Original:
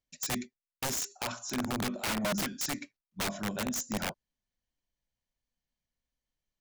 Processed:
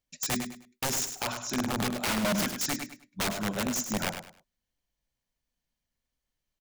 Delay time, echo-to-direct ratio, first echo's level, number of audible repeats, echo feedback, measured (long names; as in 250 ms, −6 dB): 102 ms, −8.0 dB, −8.5 dB, 3, 27%